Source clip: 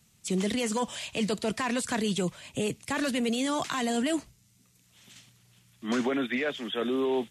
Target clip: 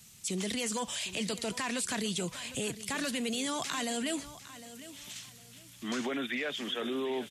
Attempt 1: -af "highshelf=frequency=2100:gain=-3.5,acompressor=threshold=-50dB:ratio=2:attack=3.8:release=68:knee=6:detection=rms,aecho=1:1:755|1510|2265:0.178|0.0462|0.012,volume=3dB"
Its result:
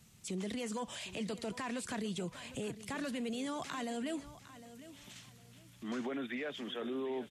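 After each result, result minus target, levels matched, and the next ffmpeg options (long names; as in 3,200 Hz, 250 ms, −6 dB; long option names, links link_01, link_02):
4,000 Hz band −4.5 dB; downward compressor: peak gain reduction +3 dB
-af "highshelf=frequency=2100:gain=8.5,acompressor=threshold=-50dB:ratio=2:attack=3.8:release=68:knee=6:detection=rms,aecho=1:1:755|1510|2265:0.178|0.0462|0.012,volume=3dB"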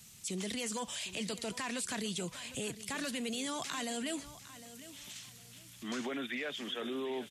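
downward compressor: peak gain reduction +4 dB
-af "highshelf=frequency=2100:gain=8.5,acompressor=threshold=-42dB:ratio=2:attack=3.8:release=68:knee=6:detection=rms,aecho=1:1:755|1510|2265:0.178|0.0462|0.012,volume=3dB"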